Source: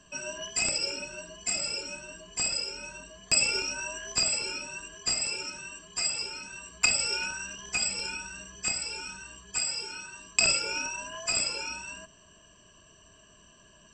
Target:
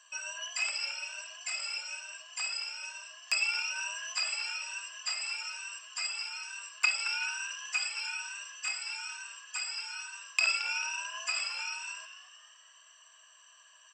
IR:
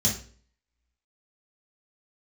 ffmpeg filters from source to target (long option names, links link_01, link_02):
-filter_complex "[0:a]highpass=frequency=940:width=0.5412,highpass=frequency=940:width=1.3066,acrossover=split=4400[link_01][link_02];[link_01]asplit=6[link_03][link_04][link_05][link_06][link_07][link_08];[link_04]adelay=221,afreqshift=100,volume=-10dB[link_09];[link_05]adelay=442,afreqshift=200,volume=-16.2dB[link_10];[link_06]adelay=663,afreqshift=300,volume=-22.4dB[link_11];[link_07]adelay=884,afreqshift=400,volume=-28.6dB[link_12];[link_08]adelay=1105,afreqshift=500,volume=-34.8dB[link_13];[link_03][link_09][link_10][link_11][link_12][link_13]amix=inputs=6:normalize=0[link_14];[link_02]acompressor=threshold=-42dB:ratio=6[link_15];[link_14][link_15]amix=inputs=2:normalize=0"